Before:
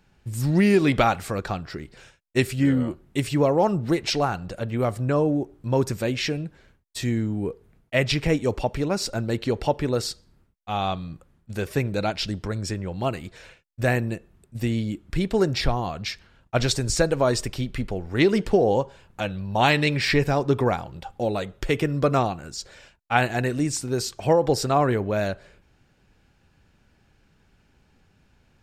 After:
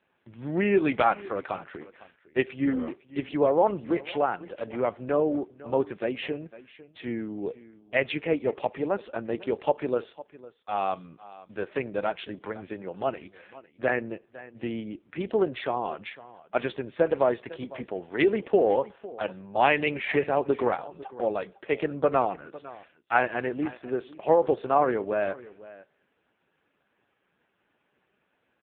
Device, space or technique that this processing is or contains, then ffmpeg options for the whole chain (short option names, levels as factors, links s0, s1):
satellite phone: -af "highpass=330,lowpass=3200,aecho=1:1:504:0.119" -ar 8000 -c:a libopencore_amrnb -b:a 5150